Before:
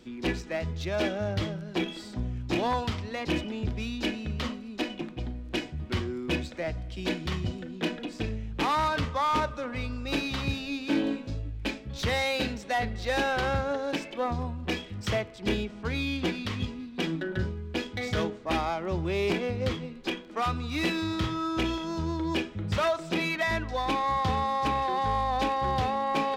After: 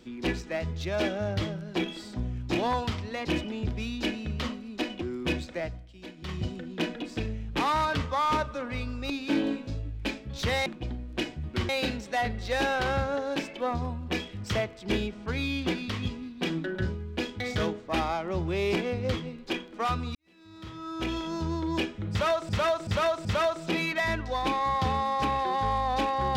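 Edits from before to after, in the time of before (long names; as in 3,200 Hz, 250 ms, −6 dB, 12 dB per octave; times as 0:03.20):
0:05.02–0:06.05: move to 0:12.26
0:06.62–0:07.48: duck −14 dB, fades 0.29 s
0:10.13–0:10.70: remove
0:20.72–0:21.82: fade in quadratic
0:22.68–0:23.06: repeat, 4 plays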